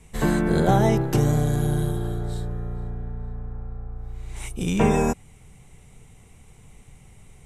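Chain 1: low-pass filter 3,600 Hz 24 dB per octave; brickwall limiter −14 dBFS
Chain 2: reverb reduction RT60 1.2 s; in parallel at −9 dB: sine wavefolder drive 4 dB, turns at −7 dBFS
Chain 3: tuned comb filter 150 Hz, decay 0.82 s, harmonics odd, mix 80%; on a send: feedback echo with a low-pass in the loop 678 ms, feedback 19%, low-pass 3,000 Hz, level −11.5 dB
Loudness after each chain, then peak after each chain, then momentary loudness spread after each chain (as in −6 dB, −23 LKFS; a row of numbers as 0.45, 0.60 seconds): −26.5, −21.5, −33.0 LKFS; −14.0, −5.5, −19.0 dBFS; 15, 18, 22 LU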